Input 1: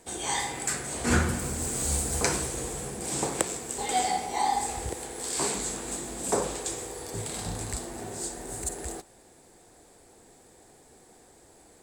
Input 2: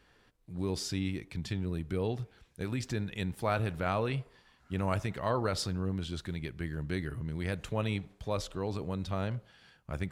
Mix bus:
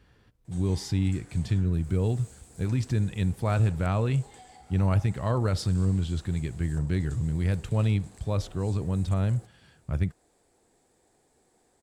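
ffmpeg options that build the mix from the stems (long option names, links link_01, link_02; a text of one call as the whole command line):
ffmpeg -i stem1.wav -i stem2.wav -filter_complex "[0:a]highshelf=frequency=9400:gain=-4.5,acompressor=threshold=-38dB:ratio=10,adelay=450,volume=-11dB[link_01];[1:a]equalizer=frequency=89:width=0.45:gain=12.5,volume=-1dB[link_02];[link_01][link_02]amix=inputs=2:normalize=0" out.wav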